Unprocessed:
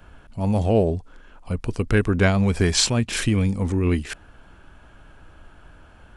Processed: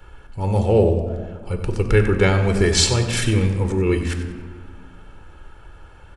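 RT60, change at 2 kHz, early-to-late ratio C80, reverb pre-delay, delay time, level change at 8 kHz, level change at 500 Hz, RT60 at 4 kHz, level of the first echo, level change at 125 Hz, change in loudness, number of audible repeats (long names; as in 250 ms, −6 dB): 1.8 s, +2.0 dB, 8.5 dB, 5 ms, 94 ms, +2.5 dB, +5.0 dB, 0.95 s, −12.5 dB, +3.0 dB, +2.5 dB, 2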